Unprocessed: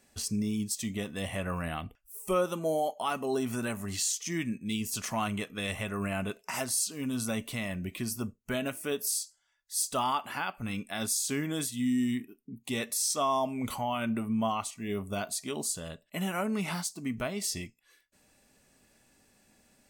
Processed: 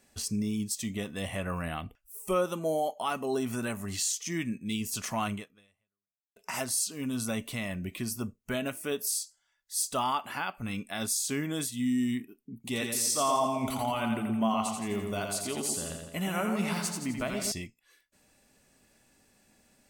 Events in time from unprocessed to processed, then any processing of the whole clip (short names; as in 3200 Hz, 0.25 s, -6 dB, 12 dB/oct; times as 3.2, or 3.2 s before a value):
5.33–6.36 fade out exponential
12.52–17.52 split-band echo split 890 Hz, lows 0.121 s, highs 85 ms, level -4.5 dB